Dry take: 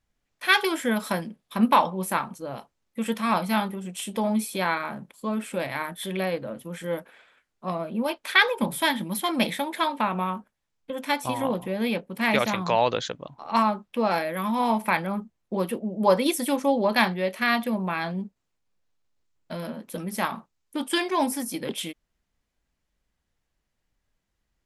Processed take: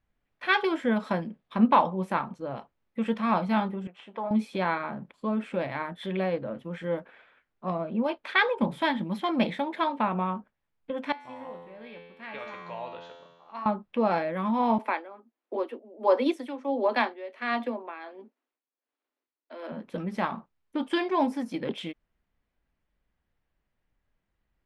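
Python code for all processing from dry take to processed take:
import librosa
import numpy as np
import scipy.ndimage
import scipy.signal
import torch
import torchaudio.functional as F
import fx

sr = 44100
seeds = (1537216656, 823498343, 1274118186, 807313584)

y = fx.chain(x, sr, fx.halfwave_gain(db=-3.0),
    fx.bandpass_q(hz=1100.0, q=0.97), at=(3.87, 4.31))
y = fx.chain(y, sr, fx.low_shelf(hz=260.0, db=-9.0),
    fx.comb_fb(f0_hz=86.0, decay_s=1.2, harmonics='all', damping=0.0, mix_pct=90), at=(11.12, 13.66))
y = fx.chain(y, sr, fx.steep_highpass(hz=240.0, slope=96),
    fx.tremolo(hz=1.4, depth=0.76), at=(14.78, 19.72))
y = scipy.signal.sosfilt(scipy.signal.butter(2, 2700.0, 'lowpass', fs=sr, output='sos'), y)
y = fx.dynamic_eq(y, sr, hz=2000.0, q=0.74, threshold_db=-39.0, ratio=4.0, max_db=-4)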